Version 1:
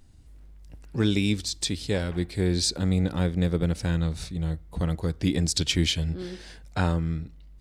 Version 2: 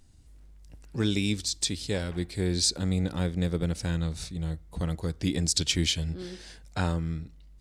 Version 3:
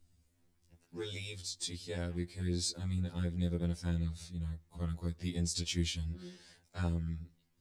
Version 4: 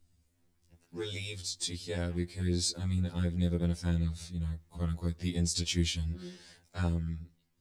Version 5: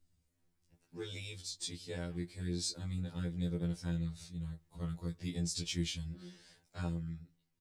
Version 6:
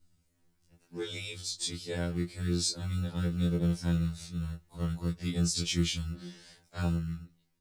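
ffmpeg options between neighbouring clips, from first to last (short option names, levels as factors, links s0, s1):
-af "equalizer=f=7300:w=0.65:g=5.5,volume=0.668"
-af "acrusher=bits=11:mix=0:aa=0.000001,afftfilt=real='re*2*eq(mod(b,4),0)':imag='im*2*eq(mod(b,4),0)':win_size=2048:overlap=0.75,volume=0.376"
-af "dynaudnorm=f=180:g=9:m=1.58"
-filter_complex "[0:a]asplit=2[s0][s1];[s1]adelay=18,volume=0.355[s2];[s0][s2]amix=inputs=2:normalize=0,volume=0.473"
-filter_complex "[0:a]acrossover=split=110[s0][s1];[s0]acrusher=samples=32:mix=1:aa=0.000001[s2];[s2][s1]amix=inputs=2:normalize=0,afftfilt=real='re*2*eq(mod(b,4),0)':imag='im*2*eq(mod(b,4),0)':win_size=2048:overlap=0.75,volume=1.58"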